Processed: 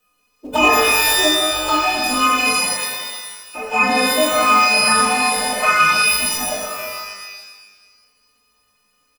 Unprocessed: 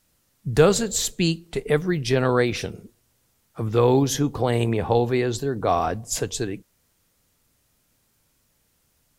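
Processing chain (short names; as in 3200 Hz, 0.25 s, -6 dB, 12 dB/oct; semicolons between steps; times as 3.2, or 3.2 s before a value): frequency quantiser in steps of 3 st; on a send: reverse bouncing-ball echo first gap 40 ms, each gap 1.4×, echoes 5; on the sum: pitch shift +12 st; envelope flanger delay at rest 4.1 ms, full sweep at -11.5 dBFS; high shelf 6400 Hz -10.5 dB; in parallel at -7 dB: short-mantissa float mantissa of 2-bit; on the sum: small resonant body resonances 630/1200/2500 Hz, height 16 dB; requantised 12-bit, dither triangular; shimmer reverb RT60 1.4 s, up +12 st, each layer -2 dB, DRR 1.5 dB; gain -4 dB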